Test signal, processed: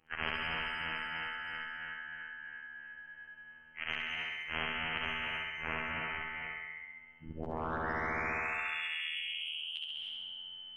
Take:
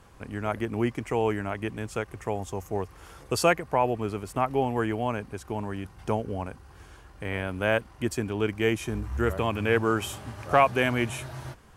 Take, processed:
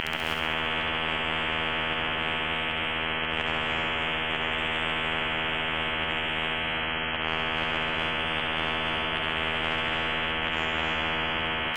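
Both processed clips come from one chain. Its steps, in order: phase scrambler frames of 0.2 s; inverted band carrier 3100 Hz; auto swell 0.168 s; compressor 2:1, threshold -38 dBFS; robotiser 80 Hz; low shelf 200 Hz +10 dB; flutter echo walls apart 11.5 m, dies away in 1.1 s; non-linear reverb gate 0.34 s rising, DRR 1 dB; spectral compressor 10:1; gain +6.5 dB

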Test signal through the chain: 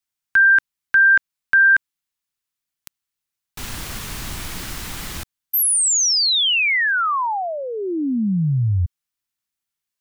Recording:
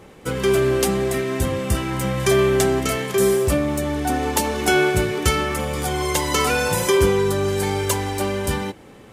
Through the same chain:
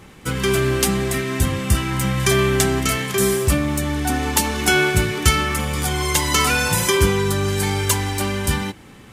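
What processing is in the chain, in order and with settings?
bell 520 Hz -10 dB 1.4 oct; gain +4.5 dB

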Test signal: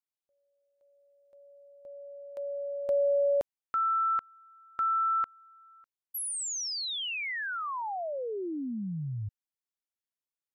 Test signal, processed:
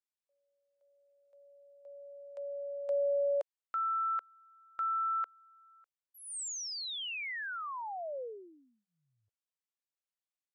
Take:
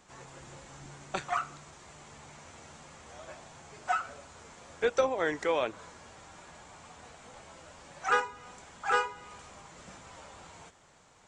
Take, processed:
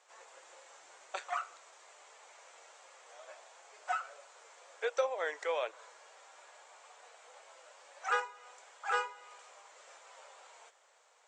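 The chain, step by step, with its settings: elliptic band-pass 500–8600 Hz, stop band 40 dB; gain -4.5 dB

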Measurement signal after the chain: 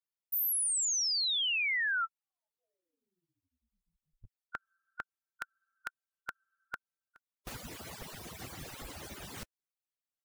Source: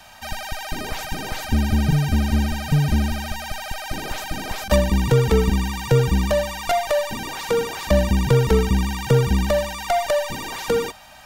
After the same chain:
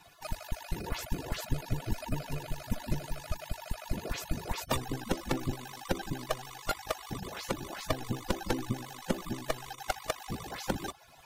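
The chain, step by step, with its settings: median-filter separation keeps percussive; gain -3.5 dB

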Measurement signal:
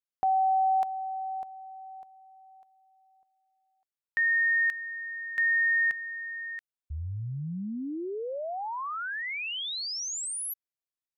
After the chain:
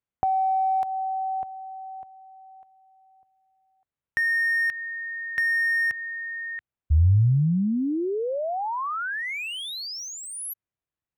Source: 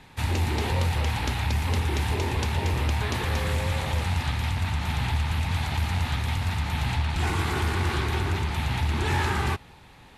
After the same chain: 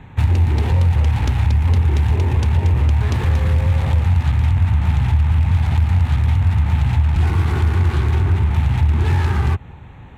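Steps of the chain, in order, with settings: Wiener smoothing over 9 samples; compressor, threshold -28 dBFS; bell 87 Hz +11.5 dB 2.2 oct; gain +6 dB

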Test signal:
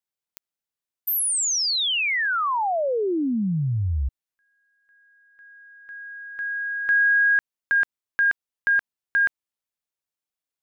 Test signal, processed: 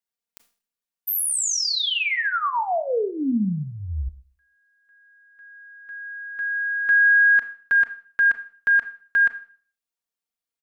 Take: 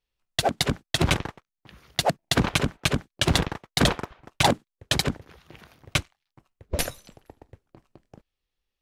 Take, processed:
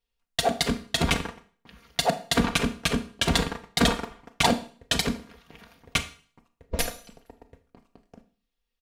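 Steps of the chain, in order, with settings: comb 4.3 ms, depth 68%; Schroeder reverb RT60 0.44 s, combs from 26 ms, DRR 10 dB; gain -2.5 dB

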